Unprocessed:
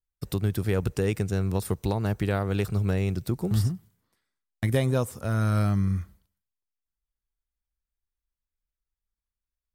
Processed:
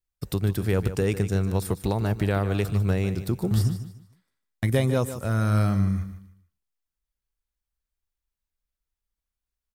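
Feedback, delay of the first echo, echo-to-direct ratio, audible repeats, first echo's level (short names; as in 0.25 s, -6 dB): 27%, 0.15 s, -11.5 dB, 3, -12.0 dB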